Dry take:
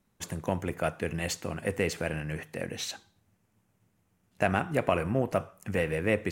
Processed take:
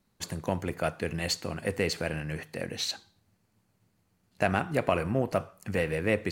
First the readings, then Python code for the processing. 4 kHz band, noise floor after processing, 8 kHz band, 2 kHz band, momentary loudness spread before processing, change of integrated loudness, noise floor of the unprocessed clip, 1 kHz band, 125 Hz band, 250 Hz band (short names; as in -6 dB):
+5.0 dB, -73 dBFS, +0.5 dB, 0.0 dB, 9 LU, +0.5 dB, -73 dBFS, 0.0 dB, 0.0 dB, 0.0 dB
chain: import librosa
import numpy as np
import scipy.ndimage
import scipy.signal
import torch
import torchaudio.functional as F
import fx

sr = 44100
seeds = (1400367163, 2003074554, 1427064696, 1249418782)

y = fx.peak_eq(x, sr, hz=4400.0, db=9.5, octaves=0.28)